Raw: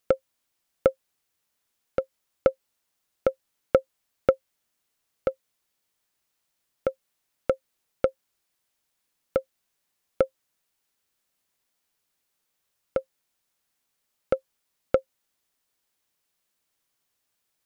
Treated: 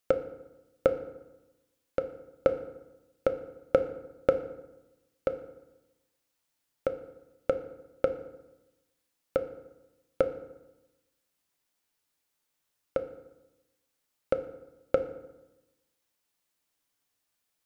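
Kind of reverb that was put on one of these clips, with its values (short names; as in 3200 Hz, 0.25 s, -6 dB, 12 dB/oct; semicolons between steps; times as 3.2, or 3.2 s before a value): FDN reverb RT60 1 s, low-frequency decay 1.2×, high-frequency decay 0.65×, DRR 7.5 dB; gain -3 dB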